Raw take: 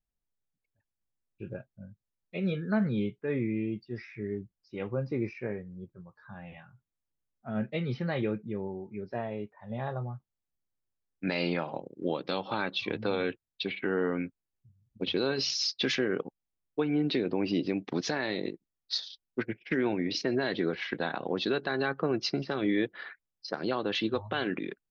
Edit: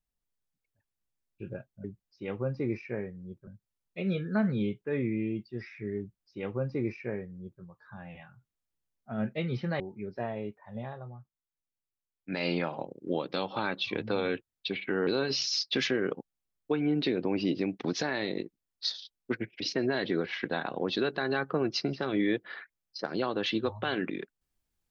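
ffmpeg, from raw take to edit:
-filter_complex "[0:a]asplit=8[s0][s1][s2][s3][s4][s5][s6][s7];[s0]atrim=end=1.842[s8];[s1]atrim=start=4.358:end=5.992[s9];[s2]atrim=start=1.838:end=8.172[s10];[s3]atrim=start=8.748:end=9.89,asetpts=PTS-STARTPTS,afade=t=out:st=0.932:d=0.21:silence=0.375837[s11];[s4]atrim=start=9.89:end=11.19,asetpts=PTS-STARTPTS,volume=0.376[s12];[s5]atrim=start=11.19:end=14.022,asetpts=PTS-STARTPTS,afade=t=in:d=0.21:silence=0.375837[s13];[s6]atrim=start=15.148:end=19.682[s14];[s7]atrim=start=20.088[s15];[s8][s9]acrossfade=d=0.004:c1=hsin:c2=hsin[s16];[s16][s10]acrossfade=d=0.004:c1=hsin:c2=hsin[s17];[s11][s12][s13]concat=n=3:v=0:a=1[s18];[s17][s18]acrossfade=d=0.004:c1=hsin:c2=hsin[s19];[s19][s14]acrossfade=d=0.004:c1=hsin:c2=hsin[s20];[s20][s15]acrossfade=d=0.004:c1=hsin:c2=hsin"

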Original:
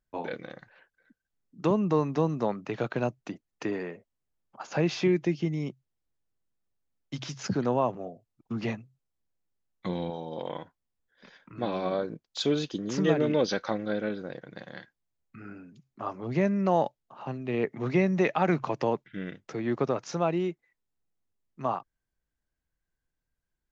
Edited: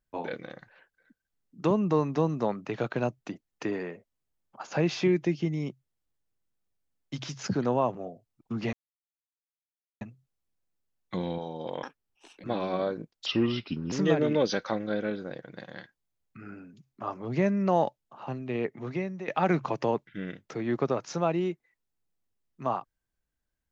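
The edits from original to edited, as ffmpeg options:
-filter_complex "[0:a]asplit=7[s0][s1][s2][s3][s4][s5][s6];[s0]atrim=end=8.73,asetpts=PTS-STARTPTS,afade=t=out:st=8.726:d=0.004:c=hsin,apad=pad_dur=1.28[s7];[s1]atrim=start=8.73:end=10.554,asetpts=PTS-STARTPTS,afade=t=in:d=0.004:c=hsin[s8];[s2]atrim=start=10.55:end=11.56,asetpts=PTS-STARTPTS,asetrate=73206,aresample=44100[s9];[s3]atrim=start=11.556:end=12.384[s10];[s4]atrim=start=12.38:end=12.91,asetpts=PTS-STARTPTS,asetrate=35280,aresample=44100,atrim=end_sample=29216,asetpts=PTS-STARTPTS[s11];[s5]atrim=start=12.906:end=18.27,asetpts=PTS-STARTPTS,afade=t=out:st=4.454:d=0.91:silence=0.141254[s12];[s6]atrim=start=18.27,asetpts=PTS-STARTPTS,afade=t=in:d=0.004:c=hsin:silence=0.141254[s13];[s7][s8]concat=n=2:v=0:a=1[s14];[s14][s9]acrossfade=d=0.004:c1=hsin:c2=hsin[s15];[s15][s10]acrossfade=d=0.004:c1=hsin:c2=hsin[s16];[s16][s11]acrossfade=d=0.004:c1=hsin:c2=hsin[s17];[s12][s13]concat=n=2:v=0:a=1[s18];[s17][s18]acrossfade=d=0.004:c1=hsin:c2=hsin"

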